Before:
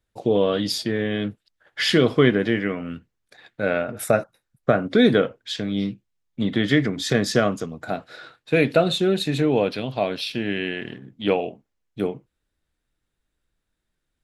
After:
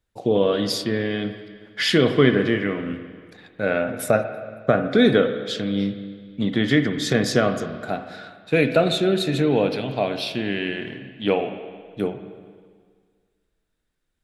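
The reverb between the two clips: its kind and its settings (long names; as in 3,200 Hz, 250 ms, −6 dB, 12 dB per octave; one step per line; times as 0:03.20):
spring reverb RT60 1.8 s, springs 46/50/54 ms, chirp 35 ms, DRR 8.5 dB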